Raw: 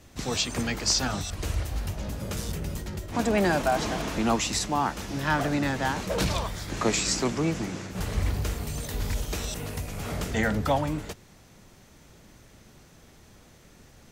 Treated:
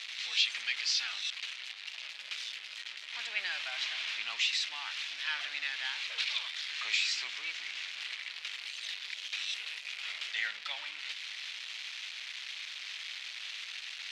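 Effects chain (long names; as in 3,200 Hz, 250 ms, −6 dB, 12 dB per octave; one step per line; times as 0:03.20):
converter with a step at zero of −26.5 dBFS
flat-topped band-pass 3,000 Hz, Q 1.4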